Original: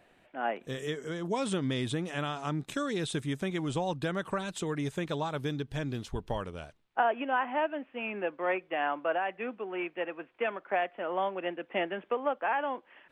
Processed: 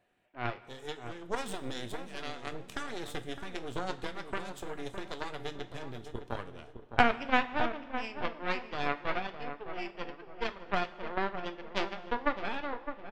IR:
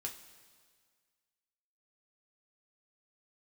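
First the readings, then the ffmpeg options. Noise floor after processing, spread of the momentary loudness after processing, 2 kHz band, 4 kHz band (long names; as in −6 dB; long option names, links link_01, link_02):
−53 dBFS, 12 LU, 0.0 dB, −0.5 dB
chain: -filter_complex "[0:a]aeval=exprs='0.188*(cos(1*acos(clip(val(0)/0.188,-1,1)))-cos(1*PI/2))+0.075*(cos(2*acos(clip(val(0)/0.188,-1,1)))-cos(2*PI/2))+0.0531*(cos(3*acos(clip(val(0)/0.188,-1,1)))-cos(3*PI/2))+0.0106*(cos(6*acos(clip(val(0)/0.188,-1,1)))-cos(6*PI/2))+0.00596*(cos(8*acos(clip(val(0)/0.188,-1,1)))-cos(8*PI/2))':channel_layout=same,asplit=2[link_01][link_02];[link_02]adelay=610,lowpass=frequency=1300:poles=1,volume=-8dB,asplit=2[link_03][link_04];[link_04]adelay=610,lowpass=frequency=1300:poles=1,volume=0.4,asplit=2[link_05][link_06];[link_06]adelay=610,lowpass=frequency=1300:poles=1,volume=0.4,asplit=2[link_07][link_08];[link_08]adelay=610,lowpass=frequency=1300:poles=1,volume=0.4,asplit=2[link_09][link_10];[link_10]adelay=610,lowpass=frequency=1300:poles=1,volume=0.4[link_11];[link_01][link_03][link_05][link_07][link_09][link_11]amix=inputs=6:normalize=0,asplit=2[link_12][link_13];[1:a]atrim=start_sample=2205[link_14];[link_13][link_14]afir=irnorm=-1:irlink=0,volume=1.5dB[link_15];[link_12][link_15]amix=inputs=2:normalize=0"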